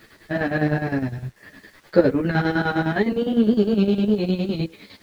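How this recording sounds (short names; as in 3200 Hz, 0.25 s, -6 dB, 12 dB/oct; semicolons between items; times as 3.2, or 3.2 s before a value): chopped level 9.8 Hz, depth 65%, duty 55%; a quantiser's noise floor 10-bit, dither none; a shimmering, thickened sound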